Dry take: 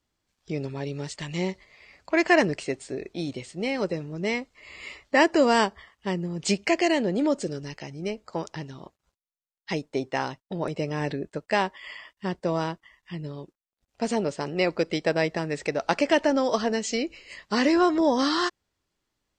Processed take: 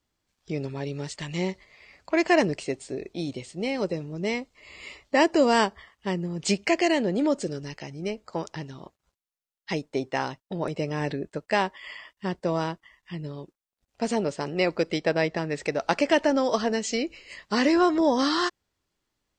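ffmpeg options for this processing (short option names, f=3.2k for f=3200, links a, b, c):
-filter_complex "[0:a]asettb=1/sr,asplit=3[a][b][c];[a]atrim=end=2.144[d];[b]atrim=start=2.14:end=5.53,asetpts=PTS-STARTPTS,afade=t=in:d=0.004:c=qsin,afade=t=out:st=3.386:d=0.004:c=qsin,equalizer=f=1.6k:w=1.5:g=-4.5[e];[c]atrim=start=5.526[f];[d][e]acrossfade=d=0.004:c1=hsin:c2=qsin[g];[g][f]acrossfade=d=0.004:c1=qsin:c2=hsin,asettb=1/sr,asplit=3[h][i][j];[h]atrim=end=15.004[k];[i]atrim=start=15:end=15.58,asetpts=PTS-STARTPTS,afade=t=in:d=0.004:c=qsin,afade=t=out:st=0.576:d=0.004:c=qsin,lowpass=6.2k[l];[j]atrim=start=15.576[m];[k][l]acrossfade=d=0.004:c1=hsin:c2=qsin[n];[n][m]acrossfade=d=0.004:c1=qsin:c2=hsin"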